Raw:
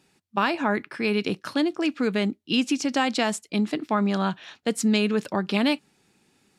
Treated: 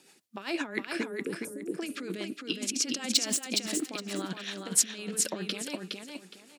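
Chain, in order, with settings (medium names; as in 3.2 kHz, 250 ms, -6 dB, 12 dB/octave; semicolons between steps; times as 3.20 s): 3.14–3.70 s: median filter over 3 samples; compressor with a negative ratio -28 dBFS, ratio -0.5; 1.03–1.78 s: elliptic band-stop 510–7900 Hz, stop band 40 dB; rotary cabinet horn 7.5 Hz; high-pass 290 Hz 12 dB/octave; treble shelf 5.5 kHz +8.5 dB; on a send: feedback delay 415 ms, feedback 22%, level -4.5 dB; on the sum: dynamic bell 880 Hz, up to -5 dB, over -48 dBFS, Q 1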